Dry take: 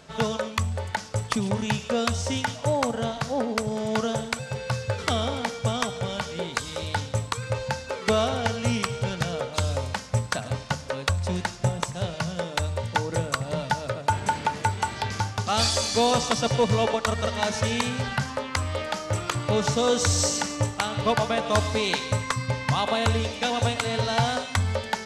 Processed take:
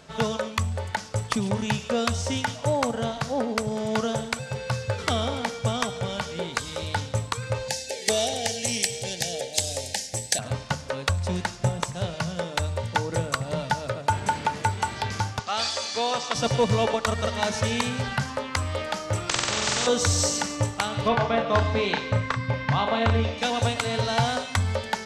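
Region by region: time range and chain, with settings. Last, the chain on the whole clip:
7.68–10.39 s: Chebyshev band-stop 820–1700 Hz, order 3 + tone controls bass -10 dB, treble +13 dB + transformer saturation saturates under 1.5 kHz
15.39–16.35 s: high-pass 810 Hz 6 dB/octave + distance through air 83 m
19.29–19.87 s: steep low-pass 6.7 kHz + flutter echo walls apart 7.9 m, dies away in 1.2 s + spectrum-flattening compressor 4:1
21.08–23.38 s: low-pass 3.3 kHz + doubling 35 ms -6 dB
whole clip: none

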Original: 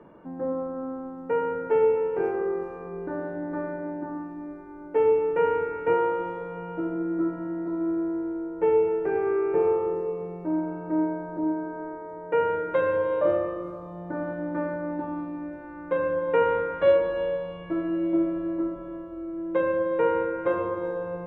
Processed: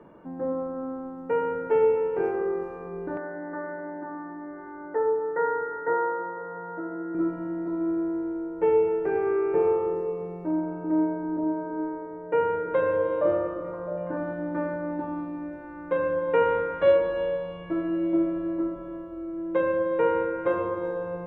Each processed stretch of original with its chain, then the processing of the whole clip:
3.17–7.15 s: brick-wall FIR low-pass 2.1 kHz + tilt EQ +3.5 dB/octave + upward compressor, threshold -31 dBFS
10.51–14.17 s: treble shelf 2.8 kHz -8 dB + repeats whose band climbs or falls 330 ms, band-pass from 330 Hz, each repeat 0.7 oct, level -7 dB
whole clip: none

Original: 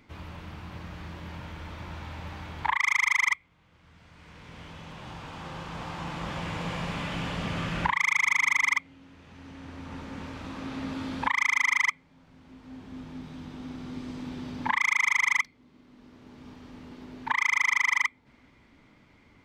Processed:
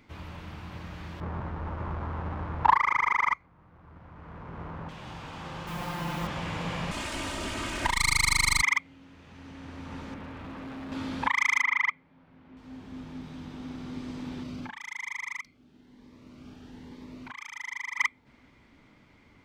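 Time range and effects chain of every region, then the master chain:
1.20–4.89 s: square wave that keeps the level + low-pass 1.5 kHz + peaking EQ 1.1 kHz +6.5 dB 1 oct
5.67–6.27 s: comb 5.7 ms, depth 77% + word length cut 8-bit, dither none
6.91–8.62 s: comb filter that takes the minimum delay 3.2 ms + peaking EQ 8.5 kHz +11.5 dB 1 oct
10.14–10.92 s: low-pass 2.6 kHz + hard clipper -37.5 dBFS
11.61–12.57 s: low-pass 2.5 kHz + bass shelf 72 Hz -9.5 dB
14.43–17.98 s: compression 5:1, threshold -33 dBFS + Shepard-style phaser rising 1.1 Hz
whole clip: none

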